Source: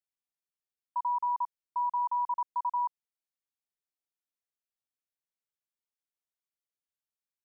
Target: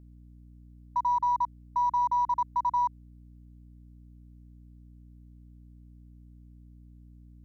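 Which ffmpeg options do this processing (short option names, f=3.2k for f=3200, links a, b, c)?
-af "aeval=exprs='val(0)+0.002*(sin(2*PI*60*n/s)+sin(2*PI*2*60*n/s)/2+sin(2*PI*3*60*n/s)/3+sin(2*PI*4*60*n/s)/4+sin(2*PI*5*60*n/s)/5)':c=same,aeval=exprs='0.0562*(cos(1*acos(clip(val(0)/0.0562,-1,1)))-cos(1*PI/2))+0.000891*(cos(6*acos(clip(val(0)/0.0562,-1,1)))-cos(6*PI/2))':c=same,volume=4dB"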